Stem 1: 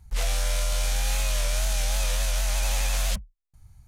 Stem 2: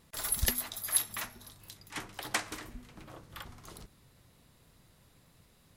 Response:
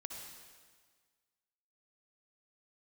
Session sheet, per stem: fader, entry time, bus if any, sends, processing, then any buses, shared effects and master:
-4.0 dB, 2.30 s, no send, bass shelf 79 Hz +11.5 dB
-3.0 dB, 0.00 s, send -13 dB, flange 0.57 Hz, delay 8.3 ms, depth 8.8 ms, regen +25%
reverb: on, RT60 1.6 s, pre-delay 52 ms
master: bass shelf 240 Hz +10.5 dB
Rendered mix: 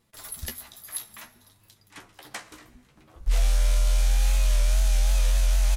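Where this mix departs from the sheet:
stem 1: entry 2.30 s -> 3.15 s; master: missing bass shelf 240 Hz +10.5 dB

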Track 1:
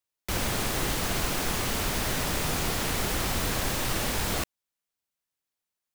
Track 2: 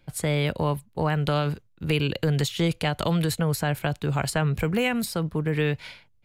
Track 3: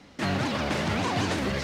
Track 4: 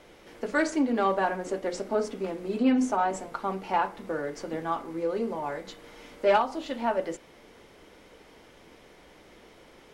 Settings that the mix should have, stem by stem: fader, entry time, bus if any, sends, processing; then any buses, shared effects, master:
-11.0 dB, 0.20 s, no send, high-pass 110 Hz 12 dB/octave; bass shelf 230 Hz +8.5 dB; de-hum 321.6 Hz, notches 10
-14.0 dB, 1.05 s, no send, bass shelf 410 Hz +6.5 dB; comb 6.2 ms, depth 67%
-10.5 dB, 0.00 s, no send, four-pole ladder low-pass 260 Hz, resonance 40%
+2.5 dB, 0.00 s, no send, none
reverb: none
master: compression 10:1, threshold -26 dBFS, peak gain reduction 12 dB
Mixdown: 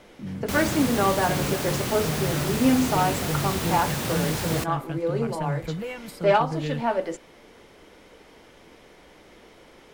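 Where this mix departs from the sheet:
stem 1 -11.0 dB -> -1.0 dB; stem 3 -10.5 dB -> 0.0 dB; master: missing compression 10:1, threshold -26 dBFS, peak gain reduction 12 dB

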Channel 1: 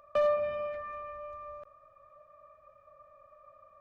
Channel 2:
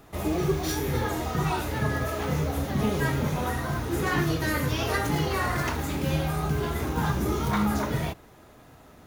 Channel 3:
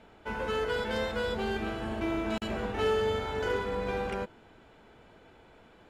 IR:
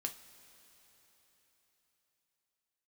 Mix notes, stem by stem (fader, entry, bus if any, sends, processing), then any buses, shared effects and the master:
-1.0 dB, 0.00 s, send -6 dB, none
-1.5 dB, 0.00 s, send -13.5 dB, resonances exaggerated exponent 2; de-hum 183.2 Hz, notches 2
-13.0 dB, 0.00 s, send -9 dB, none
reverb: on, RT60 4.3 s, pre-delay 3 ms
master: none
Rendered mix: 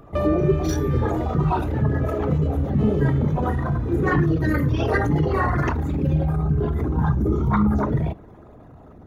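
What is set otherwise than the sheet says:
stem 2 -1.5 dB -> +5.0 dB; stem 3: send off

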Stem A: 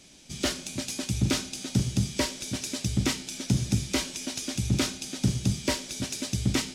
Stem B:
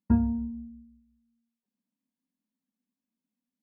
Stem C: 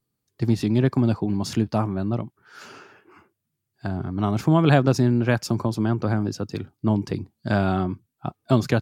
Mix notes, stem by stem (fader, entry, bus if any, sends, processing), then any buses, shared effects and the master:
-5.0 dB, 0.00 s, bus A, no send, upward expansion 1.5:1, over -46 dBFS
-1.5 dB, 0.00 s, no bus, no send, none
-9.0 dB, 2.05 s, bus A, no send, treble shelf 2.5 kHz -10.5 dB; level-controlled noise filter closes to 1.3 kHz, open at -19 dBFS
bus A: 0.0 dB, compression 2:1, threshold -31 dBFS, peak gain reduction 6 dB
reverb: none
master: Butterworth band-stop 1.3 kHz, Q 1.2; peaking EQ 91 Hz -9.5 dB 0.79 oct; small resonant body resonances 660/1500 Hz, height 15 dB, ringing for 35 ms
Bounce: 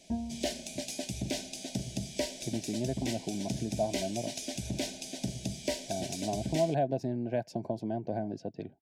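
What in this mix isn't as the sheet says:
stem A: missing upward expansion 1.5:1, over -46 dBFS; stem B -1.5 dB -> -10.5 dB

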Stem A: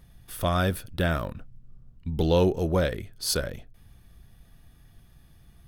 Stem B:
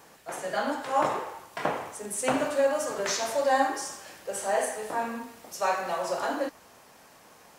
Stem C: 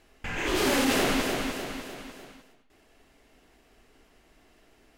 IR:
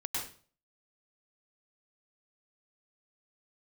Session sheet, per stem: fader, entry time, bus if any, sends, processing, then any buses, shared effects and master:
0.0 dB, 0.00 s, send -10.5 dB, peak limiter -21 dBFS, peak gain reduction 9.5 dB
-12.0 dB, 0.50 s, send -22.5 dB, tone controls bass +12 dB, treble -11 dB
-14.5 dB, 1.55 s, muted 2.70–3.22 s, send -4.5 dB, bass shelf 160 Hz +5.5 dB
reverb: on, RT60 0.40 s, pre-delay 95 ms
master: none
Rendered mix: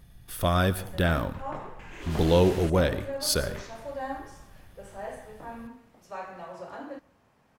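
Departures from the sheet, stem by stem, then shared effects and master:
stem A: missing peak limiter -21 dBFS, peak gain reduction 9.5 dB; stem C: send off; reverb return -7.0 dB

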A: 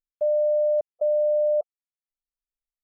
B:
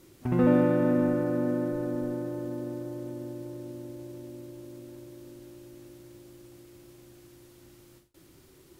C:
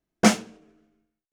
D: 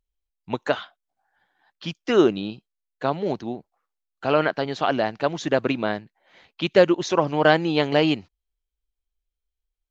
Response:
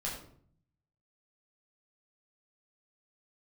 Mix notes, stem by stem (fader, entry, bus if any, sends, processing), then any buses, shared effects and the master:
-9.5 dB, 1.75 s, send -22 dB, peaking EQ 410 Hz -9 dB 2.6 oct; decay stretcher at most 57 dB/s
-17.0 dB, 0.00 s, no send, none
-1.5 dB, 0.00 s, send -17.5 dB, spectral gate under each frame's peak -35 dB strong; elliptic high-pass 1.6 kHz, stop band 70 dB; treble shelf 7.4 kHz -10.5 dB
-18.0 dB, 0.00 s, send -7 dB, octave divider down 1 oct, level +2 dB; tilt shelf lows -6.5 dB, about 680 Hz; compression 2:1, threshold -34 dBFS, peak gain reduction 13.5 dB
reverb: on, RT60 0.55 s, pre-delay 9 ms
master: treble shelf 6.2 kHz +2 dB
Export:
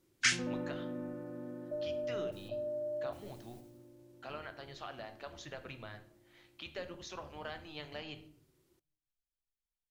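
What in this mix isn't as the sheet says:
stem A: entry 1.75 s -> 1.50 s; master: missing treble shelf 6.2 kHz +2 dB

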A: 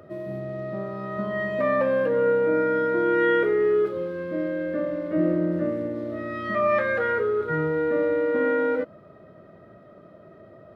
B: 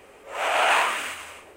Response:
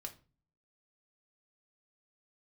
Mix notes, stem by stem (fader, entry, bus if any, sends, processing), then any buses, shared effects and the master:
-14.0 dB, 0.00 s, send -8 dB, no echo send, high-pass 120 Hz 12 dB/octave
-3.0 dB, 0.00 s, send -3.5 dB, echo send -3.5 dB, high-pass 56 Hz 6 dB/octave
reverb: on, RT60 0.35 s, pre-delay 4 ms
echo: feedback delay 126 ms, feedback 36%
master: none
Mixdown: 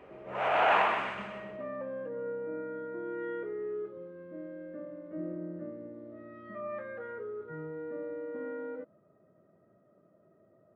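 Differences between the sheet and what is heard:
stem A: send off; master: extra tape spacing loss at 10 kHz 39 dB

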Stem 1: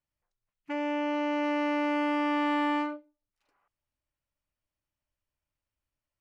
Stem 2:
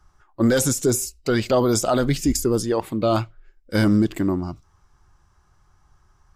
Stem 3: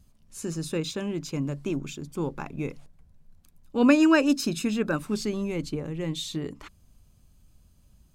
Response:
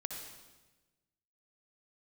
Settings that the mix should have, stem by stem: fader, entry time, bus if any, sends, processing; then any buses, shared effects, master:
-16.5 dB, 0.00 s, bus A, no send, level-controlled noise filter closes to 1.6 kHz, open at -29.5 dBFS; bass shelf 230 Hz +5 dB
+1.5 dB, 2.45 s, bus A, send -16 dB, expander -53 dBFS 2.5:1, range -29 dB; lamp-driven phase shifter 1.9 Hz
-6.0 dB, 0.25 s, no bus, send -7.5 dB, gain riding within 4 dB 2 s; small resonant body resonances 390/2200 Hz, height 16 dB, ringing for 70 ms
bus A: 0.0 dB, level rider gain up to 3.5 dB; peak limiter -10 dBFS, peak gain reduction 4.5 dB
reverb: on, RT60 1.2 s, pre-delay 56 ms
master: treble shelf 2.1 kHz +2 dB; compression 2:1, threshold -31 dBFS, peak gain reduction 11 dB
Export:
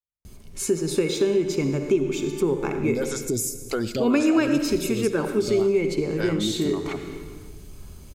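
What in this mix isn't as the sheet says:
stem 3 -6.0 dB -> +5.0 dB; reverb return +9.5 dB

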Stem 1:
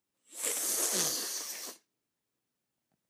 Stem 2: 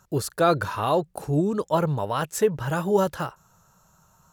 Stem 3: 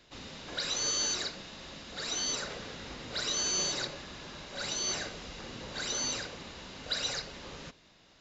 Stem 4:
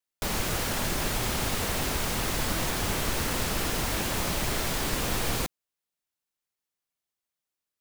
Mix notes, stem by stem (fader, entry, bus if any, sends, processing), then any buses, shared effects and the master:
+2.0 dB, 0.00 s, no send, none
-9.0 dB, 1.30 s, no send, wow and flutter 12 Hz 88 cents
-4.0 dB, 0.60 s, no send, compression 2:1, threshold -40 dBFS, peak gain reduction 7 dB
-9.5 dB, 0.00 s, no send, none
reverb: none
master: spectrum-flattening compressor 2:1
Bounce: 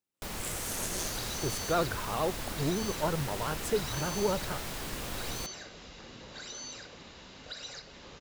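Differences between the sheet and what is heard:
stem 1 +2.0 dB -> -6.5 dB; master: missing spectrum-flattening compressor 2:1

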